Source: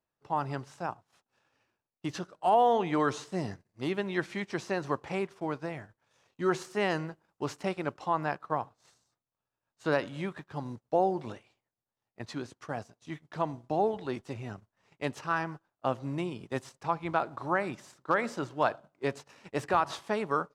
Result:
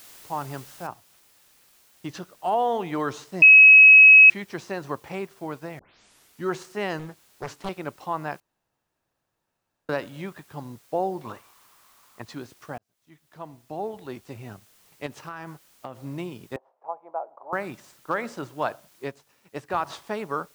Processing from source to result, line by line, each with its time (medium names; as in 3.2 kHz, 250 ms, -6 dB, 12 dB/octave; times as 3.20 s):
0.87 s: noise floor step -48 dB -59 dB
3.42–4.30 s: bleep 2.56 kHz -7 dBFS
5.79 s: tape start 0.65 s
6.99–7.69 s: loudspeaker Doppler distortion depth 0.91 ms
8.40–9.89 s: room tone
11.25–12.22 s: peaking EQ 1.1 kHz +15 dB 0.7 oct
12.78–14.48 s: fade in
15.06–16.00 s: compression 12:1, threshold -31 dBFS
16.56–17.53 s: Butterworth band-pass 680 Hz, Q 1.7
19.04–19.80 s: upward expansion, over -41 dBFS